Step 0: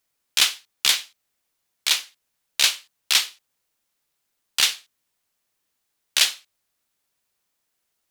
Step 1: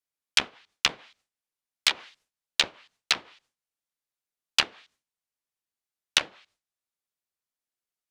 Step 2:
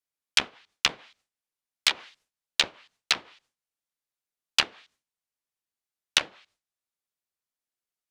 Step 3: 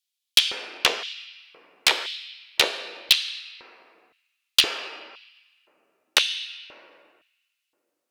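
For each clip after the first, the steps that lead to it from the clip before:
low-pass that closes with the level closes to 420 Hz, closed at -16 dBFS; gate with hold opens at -59 dBFS; trim +5 dB
no audible change
reverberation RT60 2.3 s, pre-delay 6 ms, DRR 9.5 dB; LFO high-pass square 0.97 Hz 430–3300 Hz; saturation -14 dBFS, distortion -6 dB; trim +7 dB

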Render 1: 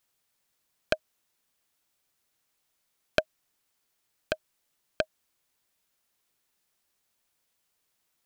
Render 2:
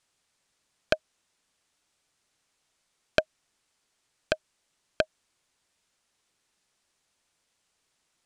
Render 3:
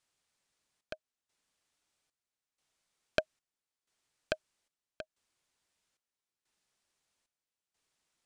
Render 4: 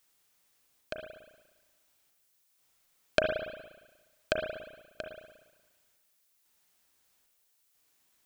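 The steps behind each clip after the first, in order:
in parallel at -2 dB: peak limiter -10.5 dBFS, peak gain reduction 7.5 dB; on the sum: low-pass 9.4 kHz 24 dB/octave; trim -1 dB
trance gate "xxxxx..." 93 bpm -12 dB; trim -6.5 dB
spring tank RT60 1.2 s, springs 35/59 ms, chirp 55 ms, DRR 2 dB; added noise blue -76 dBFS; trim +4 dB

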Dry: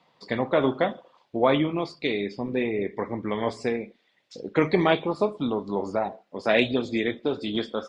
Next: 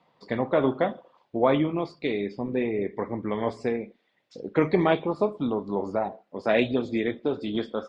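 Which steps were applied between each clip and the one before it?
treble shelf 2.5 kHz -9.5 dB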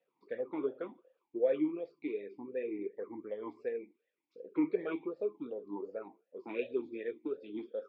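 talking filter e-u 2.7 Hz; trim -3.5 dB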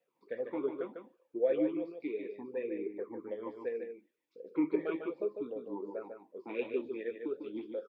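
delay 149 ms -6.5 dB

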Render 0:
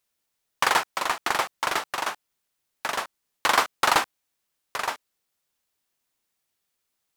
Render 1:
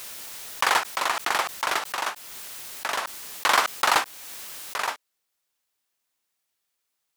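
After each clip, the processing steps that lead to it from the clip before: bass shelf 360 Hz -7.5 dB; swell ahead of each attack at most 24 dB/s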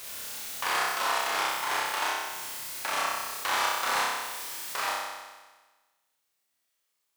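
peak limiter -16 dBFS, peak gain reduction 10.5 dB; on a send: flutter echo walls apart 5.3 m, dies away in 1.3 s; on the sum: trim -4.5 dB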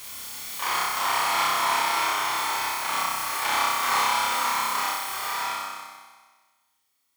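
reverse echo 30 ms -5.5 dB; swelling reverb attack 600 ms, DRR -1.5 dB

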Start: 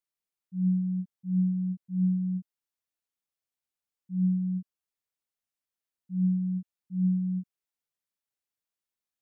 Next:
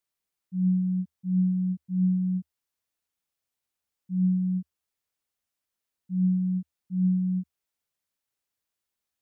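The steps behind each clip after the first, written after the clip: peaking EQ 77 Hz +7 dB 0.32 oct; in parallel at -2.5 dB: peak limiter -31.5 dBFS, peak gain reduction 12 dB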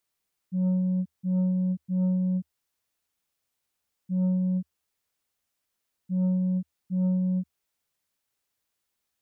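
in parallel at -2.5 dB: compression, threshold -31 dBFS, peak gain reduction 10 dB; on the sum: saturation -21 dBFS, distortion -17 dB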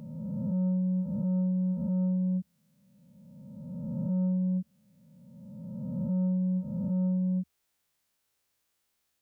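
reverse spectral sustain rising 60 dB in 2.09 s; compression 3:1, threshold -27 dBFS, peak gain reduction 3.5 dB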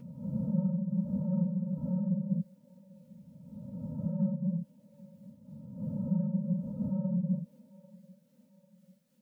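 phase randomisation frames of 50 ms; feedback echo behind a band-pass 794 ms, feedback 47%, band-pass 500 Hz, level -17.5 dB; random flutter of the level, depth 55%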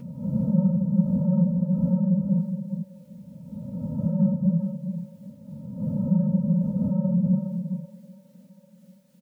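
delay 412 ms -7.5 dB; trim +8.5 dB

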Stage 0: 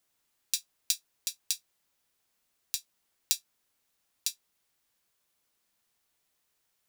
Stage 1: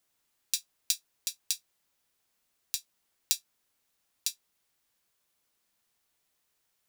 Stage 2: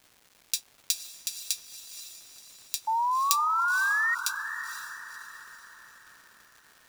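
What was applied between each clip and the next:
no audible change
painted sound rise, 2.87–4.15 s, 870–1900 Hz -27 dBFS; crackle 490 per s -46 dBFS; echo that smears into a reverb 505 ms, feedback 46%, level -9.5 dB; trim +1 dB

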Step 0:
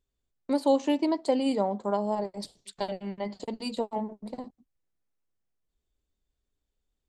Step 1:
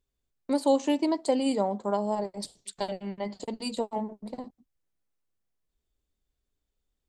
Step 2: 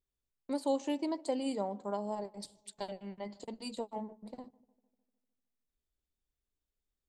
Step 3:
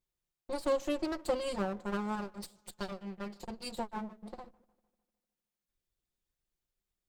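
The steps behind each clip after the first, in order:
dynamic bell 8.1 kHz, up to +7 dB, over -59 dBFS, Q 1.3
filtered feedback delay 151 ms, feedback 59%, low-pass 1.2 kHz, level -23 dB; trim -8.5 dB
comb filter that takes the minimum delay 5.6 ms; trim +2 dB

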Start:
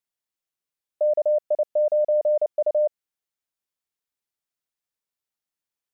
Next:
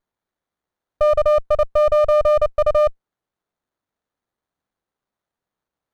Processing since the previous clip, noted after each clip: sliding maximum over 17 samples; trim +7 dB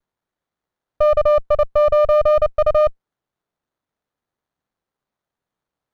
median filter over 5 samples; peaking EQ 140 Hz +3.5 dB 0.32 oct; vibrato 0.47 Hz 19 cents; trim +1 dB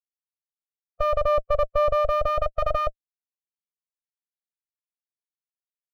expander on every frequency bin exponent 2; band-stop 610 Hz, Q 12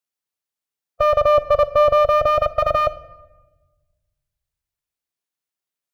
high-pass 89 Hz 6 dB/octave; simulated room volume 720 m³, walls mixed, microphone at 0.3 m; trim +7.5 dB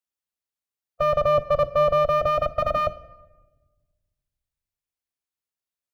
octave divider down 2 oct, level -2 dB; trim -5 dB

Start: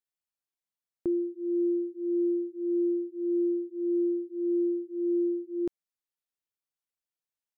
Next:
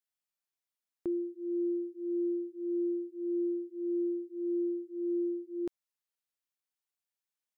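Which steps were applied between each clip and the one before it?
bass shelf 440 Hz -8 dB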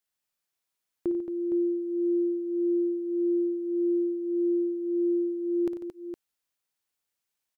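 multi-tap echo 56/93/146/223/463 ms -11/-12.5/-13/-8.5/-8.5 dB; trim +5.5 dB

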